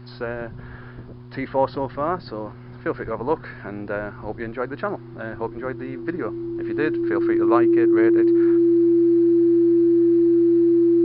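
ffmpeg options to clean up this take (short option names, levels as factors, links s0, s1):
-af "bandreject=f=122.4:t=h:w=4,bandreject=f=244.8:t=h:w=4,bandreject=f=367.2:t=h:w=4,bandreject=f=340:w=30"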